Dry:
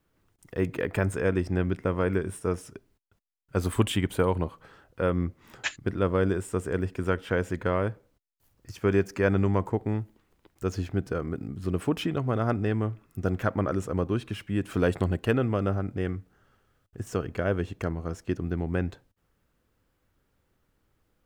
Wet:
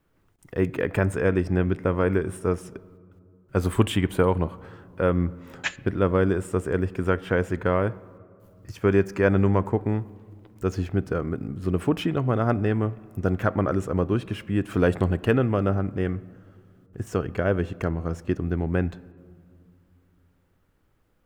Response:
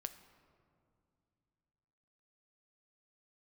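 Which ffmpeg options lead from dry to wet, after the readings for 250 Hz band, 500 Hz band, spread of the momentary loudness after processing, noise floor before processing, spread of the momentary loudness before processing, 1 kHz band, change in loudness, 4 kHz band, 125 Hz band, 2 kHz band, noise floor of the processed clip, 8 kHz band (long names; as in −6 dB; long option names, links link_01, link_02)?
+4.0 dB, +3.5 dB, 8 LU, −73 dBFS, 8 LU, +3.5 dB, +3.5 dB, +1.0 dB, +3.5 dB, +3.0 dB, −65 dBFS, −0.5 dB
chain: -filter_complex "[0:a]asplit=2[link_01][link_02];[1:a]atrim=start_sample=2205,lowpass=3400[link_03];[link_02][link_03]afir=irnorm=-1:irlink=0,volume=-2dB[link_04];[link_01][link_04]amix=inputs=2:normalize=0"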